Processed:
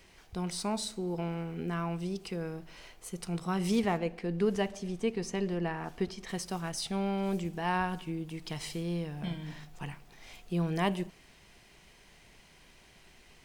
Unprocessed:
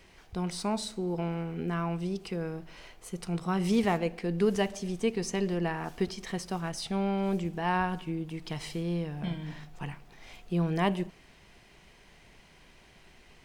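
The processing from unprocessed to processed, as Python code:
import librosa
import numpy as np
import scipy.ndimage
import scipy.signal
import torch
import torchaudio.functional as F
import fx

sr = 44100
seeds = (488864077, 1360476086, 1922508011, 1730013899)

y = fx.high_shelf(x, sr, hz=4500.0, db=fx.steps((0.0, 5.5), (3.79, -4.0), (6.28, 7.0)))
y = y * 10.0 ** (-2.5 / 20.0)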